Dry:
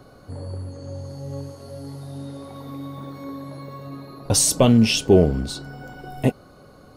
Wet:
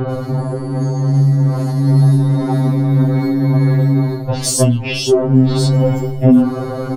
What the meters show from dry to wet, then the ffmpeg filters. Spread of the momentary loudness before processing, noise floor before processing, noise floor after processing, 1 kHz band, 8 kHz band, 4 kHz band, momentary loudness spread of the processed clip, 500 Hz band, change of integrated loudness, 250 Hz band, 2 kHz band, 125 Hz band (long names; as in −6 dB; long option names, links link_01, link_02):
21 LU, −49 dBFS, −23 dBFS, +7.0 dB, +0.5 dB, +2.0 dB, 8 LU, +5.5 dB, +4.0 dB, +9.0 dB, +4.0 dB, +15.0 dB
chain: -filter_complex "[0:a]equalizer=frequency=290:width=0.35:gain=5.5,bandreject=frequency=50:width_type=h:width=6,bandreject=frequency=100:width_type=h:width=6,bandreject=frequency=150:width_type=h:width=6,bandreject=frequency=200:width_type=h:width=6,bandreject=frequency=250:width_type=h:width=6,areverse,acompressor=threshold=-32dB:ratio=5,areverse,asoftclip=type=tanh:threshold=-25.5dB,highshelf=frequency=3900:gain=-8,acrossover=split=3300[link_01][link_02];[link_02]adelay=100[link_03];[link_01][link_03]amix=inputs=2:normalize=0,alimiter=level_in=30dB:limit=-1dB:release=50:level=0:latency=1,afftfilt=real='re*2.45*eq(mod(b,6),0)':imag='im*2.45*eq(mod(b,6),0)':win_size=2048:overlap=0.75,volume=-4dB"